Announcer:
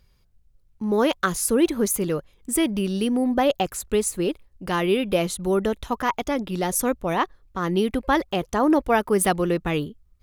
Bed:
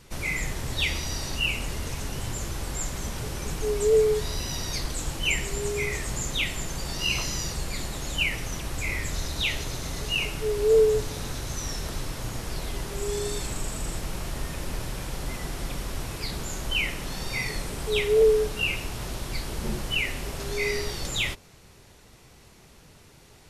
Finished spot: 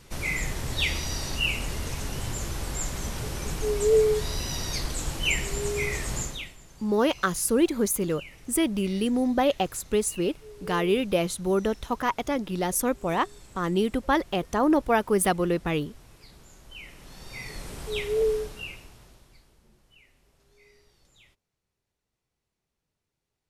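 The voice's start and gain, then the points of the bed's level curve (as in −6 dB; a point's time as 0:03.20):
6.00 s, −2.5 dB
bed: 0:06.21 0 dB
0:06.57 −19 dB
0:16.66 −19 dB
0:17.70 −5.5 dB
0:18.34 −5.5 dB
0:19.68 −31.5 dB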